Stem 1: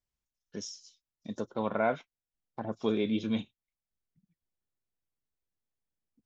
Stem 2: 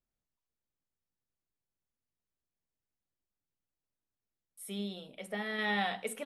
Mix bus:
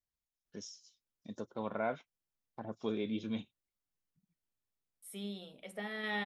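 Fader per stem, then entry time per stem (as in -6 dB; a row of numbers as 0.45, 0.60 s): -7.0, -4.0 dB; 0.00, 0.45 s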